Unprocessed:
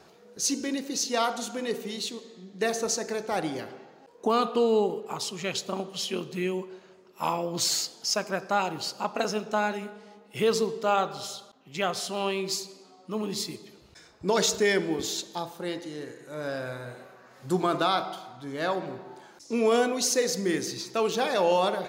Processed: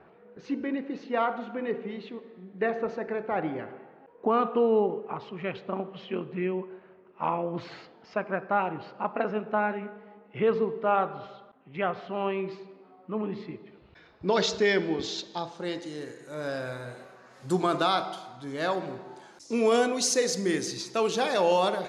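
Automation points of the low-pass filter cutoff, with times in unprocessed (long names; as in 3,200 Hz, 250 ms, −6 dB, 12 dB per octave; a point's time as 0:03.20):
low-pass filter 24 dB per octave
0:13.57 2,300 Hz
0:14.49 5,100 Hz
0:15.33 5,100 Hz
0:16.02 11,000 Hz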